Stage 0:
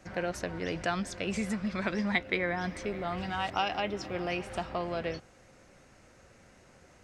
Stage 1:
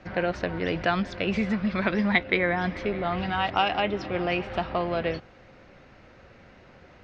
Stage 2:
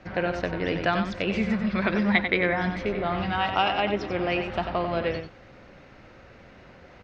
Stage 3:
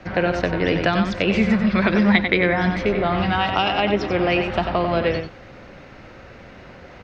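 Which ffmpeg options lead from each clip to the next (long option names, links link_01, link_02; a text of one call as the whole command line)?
ffmpeg -i in.wav -af "lowpass=frequency=4200:width=0.5412,lowpass=frequency=4200:width=1.3066,volume=6.5dB" out.wav
ffmpeg -i in.wav -filter_complex "[0:a]areverse,acompressor=mode=upward:threshold=-45dB:ratio=2.5,areverse,asplit=2[link_01][link_02];[link_02]adelay=93.29,volume=-7dB,highshelf=frequency=4000:gain=-2.1[link_03];[link_01][link_03]amix=inputs=2:normalize=0" out.wav
ffmpeg -i in.wav -filter_complex "[0:a]acrossover=split=410|3000[link_01][link_02][link_03];[link_02]acompressor=threshold=-26dB:ratio=6[link_04];[link_01][link_04][link_03]amix=inputs=3:normalize=0,volume=7.5dB" out.wav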